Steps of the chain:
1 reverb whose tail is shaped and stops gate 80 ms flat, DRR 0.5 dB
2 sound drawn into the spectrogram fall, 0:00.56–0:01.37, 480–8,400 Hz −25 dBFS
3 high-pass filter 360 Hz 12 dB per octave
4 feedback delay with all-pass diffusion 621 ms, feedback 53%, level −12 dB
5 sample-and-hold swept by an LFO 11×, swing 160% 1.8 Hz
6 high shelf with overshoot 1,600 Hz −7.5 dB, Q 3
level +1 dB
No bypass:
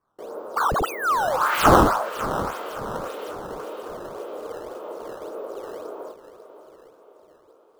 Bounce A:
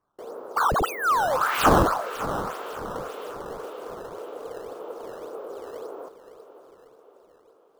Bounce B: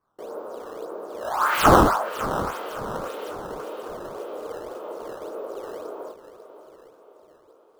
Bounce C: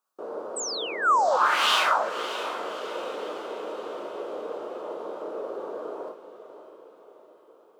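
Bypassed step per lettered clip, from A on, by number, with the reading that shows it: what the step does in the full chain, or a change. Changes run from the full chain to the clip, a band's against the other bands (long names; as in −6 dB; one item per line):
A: 1, change in momentary loudness spread −2 LU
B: 2, change in integrated loudness −1.5 LU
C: 5, change in crest factor −5.5 dB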